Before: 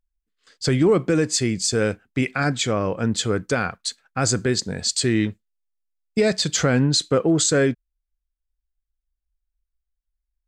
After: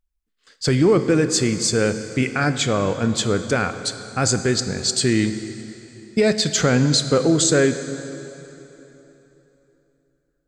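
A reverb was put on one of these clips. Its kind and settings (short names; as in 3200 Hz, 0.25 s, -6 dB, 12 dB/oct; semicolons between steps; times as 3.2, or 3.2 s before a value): plate-style reverb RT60 3.4 s, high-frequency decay 0.8×, DRR 9.5 dB; gain +1.5 dB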